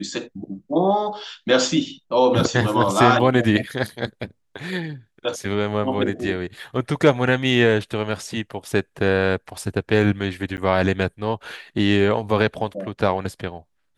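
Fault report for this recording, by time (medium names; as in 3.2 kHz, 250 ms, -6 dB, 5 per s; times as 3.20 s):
10.57–10.58 s: dropout 9.1 ms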